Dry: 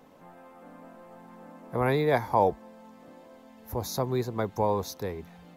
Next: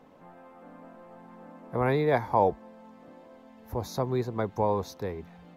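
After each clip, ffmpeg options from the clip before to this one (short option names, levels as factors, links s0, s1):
-af "highshelf=f=5300:g=-11.5"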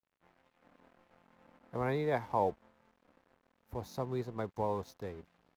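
-af "aeval=exprs='sgn(val(0))*max(abs(val(0))-0.00376,0)':c=same,volume=0.422"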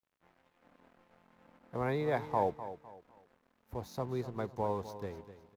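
-af "aecho=1:1:253|506|759:0.224|0.0716|0.0229"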